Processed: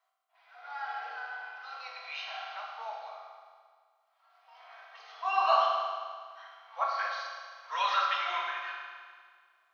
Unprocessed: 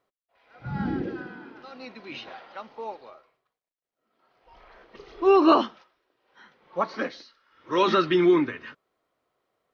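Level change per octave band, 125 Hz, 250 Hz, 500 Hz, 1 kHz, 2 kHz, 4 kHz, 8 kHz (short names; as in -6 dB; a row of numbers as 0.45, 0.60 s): under -40 dB, under -40 dB, -14.5 dB, -1.5 dB, 0.0 dB, -2.0 dB, n/a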